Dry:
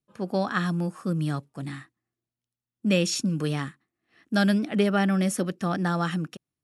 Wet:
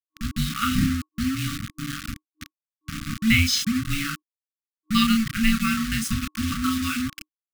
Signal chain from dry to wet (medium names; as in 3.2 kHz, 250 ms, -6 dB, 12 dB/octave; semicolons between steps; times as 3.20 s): wind noise 440 Hz -37 dBFS; frequency weighting D; reverb removal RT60 0.64 s; tilt EQ -1.5 dB/octave; doubling 29 ms -5 dB; tempo 0.88×; frequency shift -430 Hz; bit crusher 5-bit; FFT band-reject 310–1100 Hz